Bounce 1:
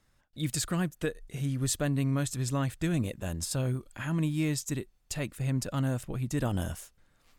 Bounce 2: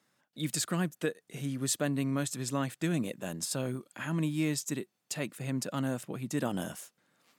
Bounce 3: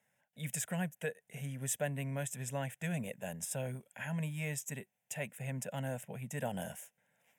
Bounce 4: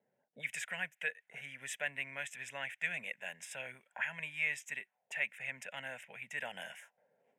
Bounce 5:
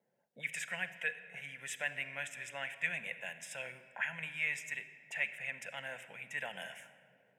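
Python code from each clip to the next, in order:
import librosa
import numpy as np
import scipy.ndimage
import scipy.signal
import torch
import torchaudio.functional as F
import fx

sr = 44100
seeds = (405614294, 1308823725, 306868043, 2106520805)

y1 = scipy.signal.sosfilt(scipy.signal.butter(4, 160.0, 'highpass', fs=sr, output='sos'), x)
y2 = fx.fixed_phaser(y1, sr, hz=1200.0, stages=6)
y2 = y2 * 10.0 ** (-1.0 / 20.0)
y3 = fx.auto_wah(y2, sr, base_hz=360.0, top_hz=2200.0, q=2.6, full_db=-40.5, direction='up')
y3 = y3 * 10.0 ** (11.0 / 20.0)
y4 = fx.room_shoebox(y3, sr, seeds[0], volume_m3=3800.0, walls='mixed', distance_m=0.81)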